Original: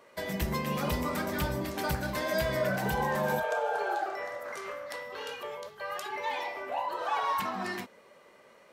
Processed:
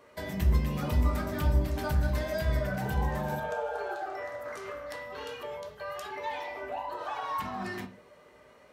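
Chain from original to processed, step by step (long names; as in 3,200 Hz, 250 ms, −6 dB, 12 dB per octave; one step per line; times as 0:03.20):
downward compressor 1.5 to 1, threshold −39 dBFS, peak gain reduction 5.5 dB
low-shelf EQ 240 Hz +7.5 dB
on a send: convolution reverb RT60 0.40 s, pre-delay 4 ms, DRR 4 dB
on the sum: level −2 dB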